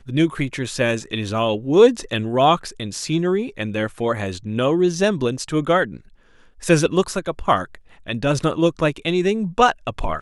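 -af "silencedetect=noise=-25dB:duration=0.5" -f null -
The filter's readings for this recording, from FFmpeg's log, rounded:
silence_start: 5.97
silence_end: 6.64 | silence_duration: 0.67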